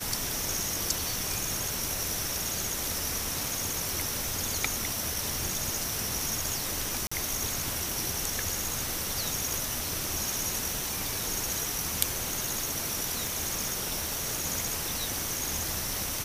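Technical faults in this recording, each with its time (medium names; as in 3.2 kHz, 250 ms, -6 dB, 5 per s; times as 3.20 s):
3.89 s: pop
7.07–7.12 s: dropout 45 ms
9.54 s: pop
13.27 s: pop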